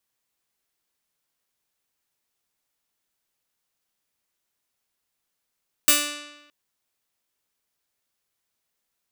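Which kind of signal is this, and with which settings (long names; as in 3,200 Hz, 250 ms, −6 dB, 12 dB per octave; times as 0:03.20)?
Karplus-Strong string D4, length 0.62 s, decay 1.07 s, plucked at 0.36, bright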